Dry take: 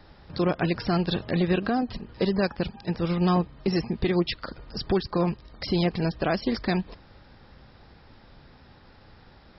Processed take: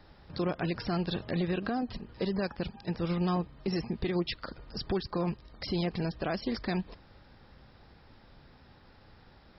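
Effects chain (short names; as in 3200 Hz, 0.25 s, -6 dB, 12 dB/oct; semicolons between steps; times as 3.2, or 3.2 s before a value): limiter -18 dBFS, peak gain reduction 5 dB; gain -4.5 dB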